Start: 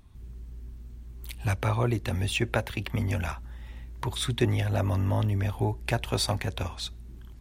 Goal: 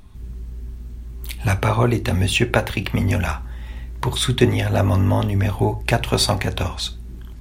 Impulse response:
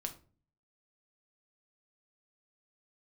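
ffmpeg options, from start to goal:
-filter_complex "[0:a]asplit=2[link_01][link_02];[1:a]atrim=start_sample=2205,atrim=end_sample=6174,asetrate=48510,aresample=44100[link_03];[link_02][link_03]afir=irnorm=-1:irlink=0,volume=0.5dB[link_04];[link_01][link_04]amix=inputs=2:normalize=0,volume=4.5dB"

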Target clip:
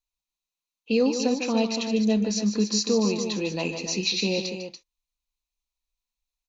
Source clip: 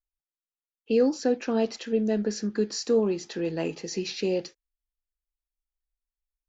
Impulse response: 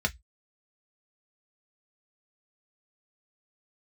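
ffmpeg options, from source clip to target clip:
-af "equalizer=frequency=200:width_type=o:width=0.33:gain=6,equalizer=frequency=400:width_type=o:width=0.33:gain=-5,equalizer=frequency=1000:width_type=o:width=0.33:gain=9,equalizer=frequency=1600:width_type=o:width=0.33:gain=-12,equalizer=frequency=2500:width_type=o:width=0.33:gain=10,equalizer=frequency=4000:width_type=o:width=0.33:gain=12,equalizer=frequency=6300:width_type=o:width=0.33:gain=9,aecho=1:1:151.6|288.6:0.355|0.355"

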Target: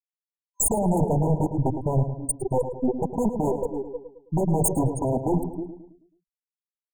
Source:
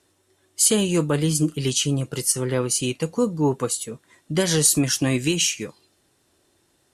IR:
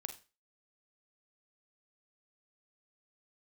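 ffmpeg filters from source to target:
-filter_complex "[0:a]afftfilt=real='re*gte(hypot(re,im),0.562)':imag='im*gte(hypot(re,im),0.562)':win_size=1024:overlap=0.75,highshelf=frequency=3700:gain=12,asplit=2[link_01][link_02];[link_02]adelay=310,highpass=300,lowpass=3400,asoftclip=type=hard:threshold=-19.5dB,volume=-14dB[link_03];[link_01][link_03]amix=inputs=2:normalize=0,aeval=exprs='0.299*(cos(1*acos(clip(val(0)/0.299,-1,1)))-cos(1*PI/2))+0.0531*(cos(4*acos(clip(val(0)/0.299,-1,1)))-cos(4*PI/2))+0.0422*(cos(5*acos(clip(val(0)/0.299,-1,1)))-cos(5*PI/2))+0.106*(cos(6*acos(clip(val(0)/0.299,-1,1)))-cos(6*PI/2))':channel_layout=same,aeval=exprs='0.141*(abs(mod(val(0)/0.141+3,4)-2)-1)':channel_layout=same,asplit=2[link_04][link_05];[link_05]adelay=108,lowpass=frequency=2600:poles=1,volume=-9dB,asplit=2[link_06][link_07];[link_07]adelay=108,lowpass=frequency=2600:poles=1,volume=0.47,asplit=2[link_08][link_09];[link_09]adelay=108,lowpass=frequency=2600:poles=1,volume=0.47,asplit=2[link_10][link_11];[link_11]adelay=108,lowpass=frequency=2600:poles=1,volume=0.47,asplit=2[link_12][link_13];[link_13]adelay=108,lowpass=frequency=2600:poles=1,volume=0.47[link_14];[link_06][link_08][link_10][link_12][link_14]amix=inputs=5:normalize=0[link_15];[link_04][link_15]amix=inputs=2:normalize=0,afftfilt=real='re*(1-between(b*sr/4096,1000,6400))':imag='im*(1-between(b*sr/4096,1000,6400))':win_size=4096:overlap=0.75,volume=3.5dB"

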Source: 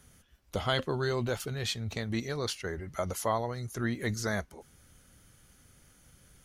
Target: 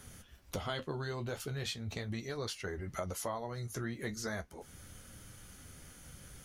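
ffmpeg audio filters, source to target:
ffmpeg -i in.wav -af "acompressor=threshold=-47dB:ratio=3,flanger=delay=9.4:depth=5:regen=-43:speed=0.39:shape=sinusoidal,volume=10.5dB" out.wav

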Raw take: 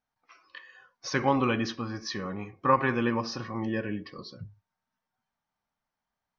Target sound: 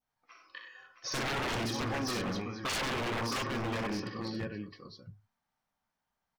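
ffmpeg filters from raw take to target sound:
ffmpeg -i in.wav -af "adynamicequalizer=threshold=0.00794:dfrequency=1600:dqfactor=2:tfrequency=1600:tqfactor=2:attack=5:release=100:ratio=0.375:range=2.5:mode=cutabove:tftype=bell,aecho=1:1:44|61|97|280|476|665:0.335|0.501|0.335|0.112|0.15|0.501,aeval=exprs='0.0447*(abs(mod(val(0)/0.0447+3,4)-2)-1)':channel_layout=same,volume=-1.5dB" out.wav

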